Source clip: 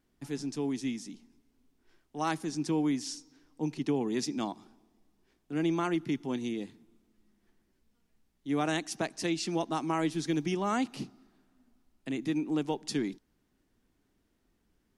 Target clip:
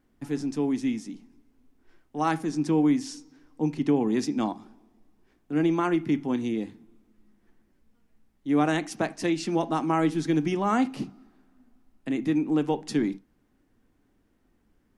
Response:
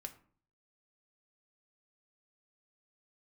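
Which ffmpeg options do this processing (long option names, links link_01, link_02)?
-filter_complex "[0:a]asplit=2[link_01][link_02];[1:a]atrim=start_sample=2205,afade=type=out:start_time=0.14:duration=0.01,atrim=end_sample=6615,lowpass=2700[link_03];[link_02][link_03]afir=irnorm=-1:irlink=0,volume=4.5dB[link_04];[link_01][link_04]amix=inputs=2:normalize=0"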